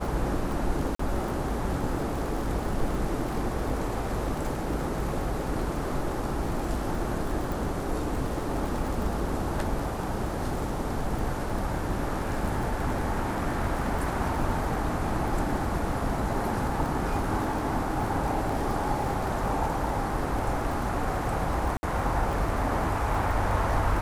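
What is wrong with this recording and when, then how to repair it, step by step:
surface crackle 34 per second −32 dBFS
0:00.95–0:00.99: drop-out 44 ms
0:07.52: click
0:21.77–0:21.83: drop-out 60 ms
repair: click removal
repair the gap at 0:00.95, 44 ms
repair the gap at 0:21.77, 60 ms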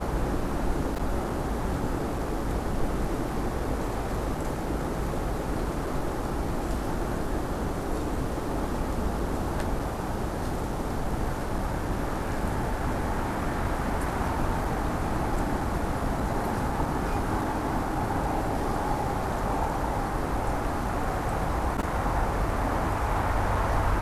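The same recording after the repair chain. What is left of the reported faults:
none of them is left

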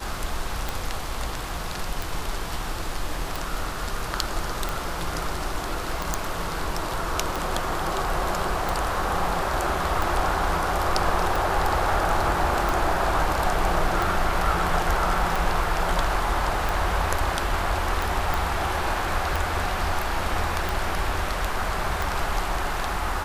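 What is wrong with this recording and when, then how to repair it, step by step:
scratch tick 45 rpm
0:06.14: click
0:18.34: click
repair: click removal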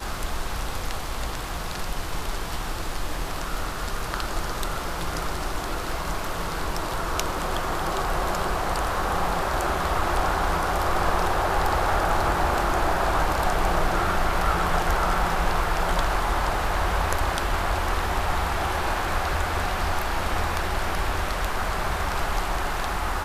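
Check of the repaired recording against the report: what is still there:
none of them is left

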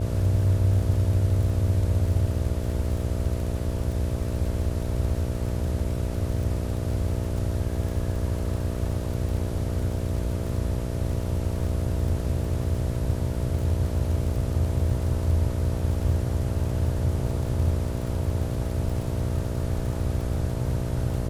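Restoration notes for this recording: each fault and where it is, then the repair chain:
mains buzz 60 Hz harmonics 11 −30 dBFS
surface crackle 50 per second −33 dBFS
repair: click removal
hum removal 60 Hz, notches 11

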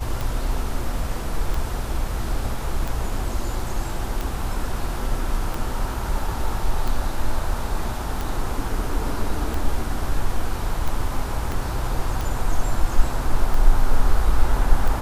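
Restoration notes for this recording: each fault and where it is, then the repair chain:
scratch tick 45 rpm
0:11.52: click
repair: click removal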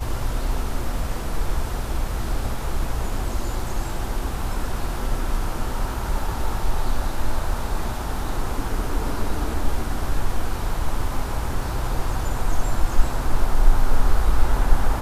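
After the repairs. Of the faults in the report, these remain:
0:11.52: click

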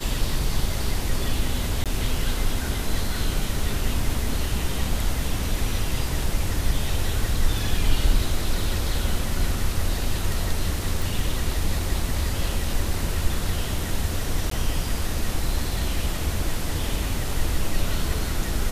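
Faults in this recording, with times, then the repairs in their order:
0:01.84–0:01.86: drop-out 17 ms
0:11.02: click
0:14.50–0:14.51: drop-out 13 ms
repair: click removal
repair the gap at 0:01.84, 17 ms
repair the gap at 0:14.50, 13 ms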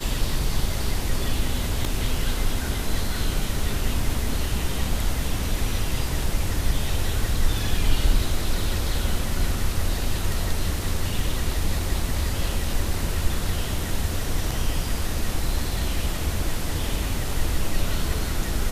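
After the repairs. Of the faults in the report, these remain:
none of them is left

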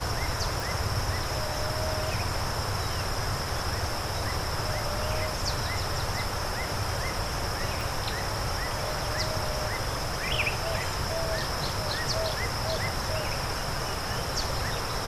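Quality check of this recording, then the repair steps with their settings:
0:00.60: click
0:07.81: click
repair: click removal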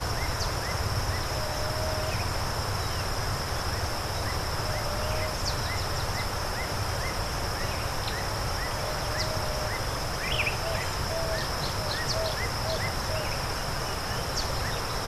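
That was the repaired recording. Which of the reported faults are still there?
0:07.81: click

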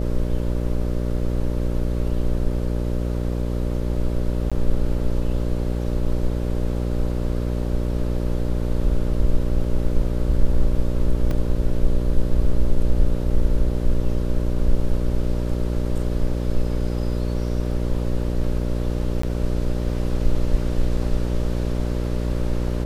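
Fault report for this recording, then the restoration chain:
mains buzz 60 Hz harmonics 10 −24 dBFS
0:04.50–0:04.52: drop-out 16 ms
0:11.31: drop-out 2.3 ms
0:19.22–0:19.23: drop-out 14 ms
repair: hum removal 60 Hz, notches 10
repair the gap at 0:04.50, 16 ms
repair the gap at 0:11.31, 2.3 ms
repair the gap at 0:19.22, 14 ms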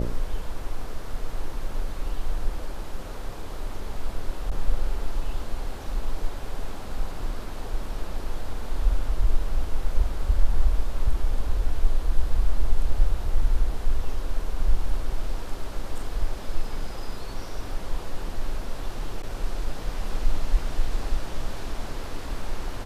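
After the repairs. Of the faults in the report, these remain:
none of them is left

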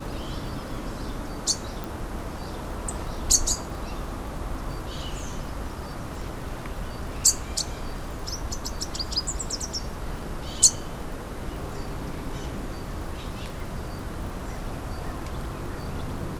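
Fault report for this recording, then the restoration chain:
surface crackle 46 per second −36 dBFS
0:01.84: click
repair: click removal

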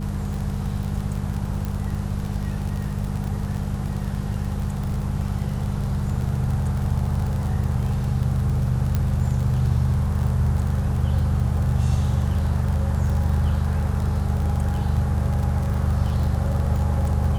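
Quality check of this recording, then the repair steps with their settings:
surface crackle 39 per second −27 dBFS
mains hum 50 Hz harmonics 4 −27 dBFS
0:01.65: click
0:08.95: click −11 dBFS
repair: click removal
hum removal 50 Hz, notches 4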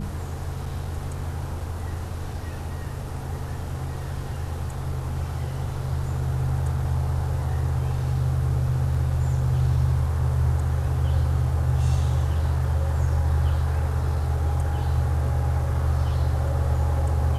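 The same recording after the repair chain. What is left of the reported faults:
0:08.95: click

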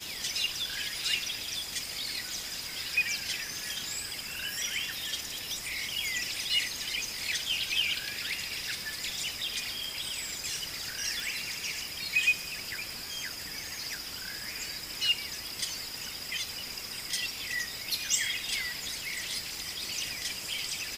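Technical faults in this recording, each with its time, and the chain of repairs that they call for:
0:11.20: click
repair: click removal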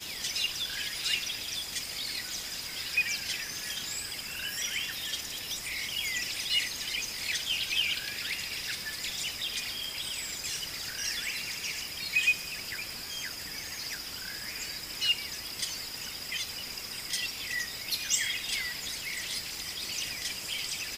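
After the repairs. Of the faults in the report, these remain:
none of them is left

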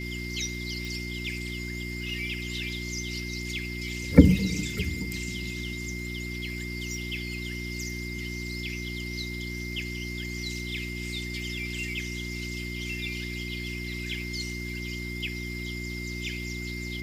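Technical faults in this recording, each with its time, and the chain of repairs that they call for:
mains hum 60 Hz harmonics 6 −36 dBFS
whistle 2,100 Hz −37 dBFS
0:00.85: click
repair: click removal
notch filter 2,100 Hz, Q 30
hum removal 60 Hz, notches 6

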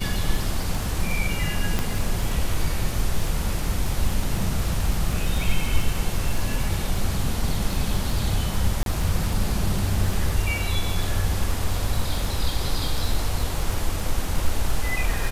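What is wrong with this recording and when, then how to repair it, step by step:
surface crackle 22 per second −25 dBFS
0:01.79: click −9 dBFS
0:08.83–0:08.86: drop-out 32 ms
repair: click removal
repair the gap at 0:08.83, 32 ms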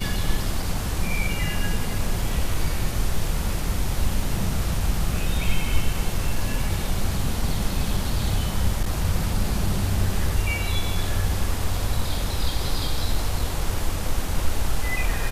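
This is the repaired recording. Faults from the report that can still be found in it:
none of them is left

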